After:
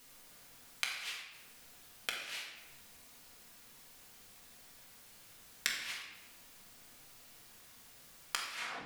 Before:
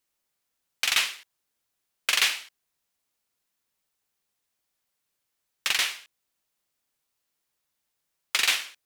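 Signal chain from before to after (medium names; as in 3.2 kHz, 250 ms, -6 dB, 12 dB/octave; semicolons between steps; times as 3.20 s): tape stop on the ending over 0.34 s; bass shelf 210 Hz +3.5 dB; compressor with a negative ratio -34 dBFS, ratio -1; inverted gate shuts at -30 dBFS, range -27 dB; flange 0.42 Hz, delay 7 ms, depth 7.2 ms, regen -60%; simulated room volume 1000 m³, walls mixed, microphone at 1.8 m; trim +16.5 dB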